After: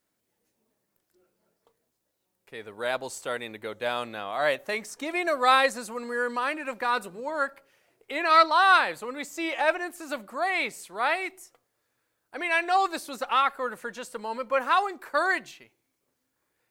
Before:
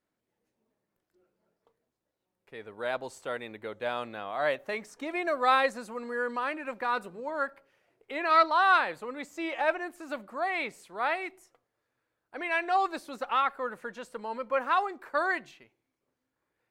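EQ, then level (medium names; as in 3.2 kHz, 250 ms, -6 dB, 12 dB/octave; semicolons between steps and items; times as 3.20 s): treble shelf 4.2 kHz +11.5 dB; +2.5 dB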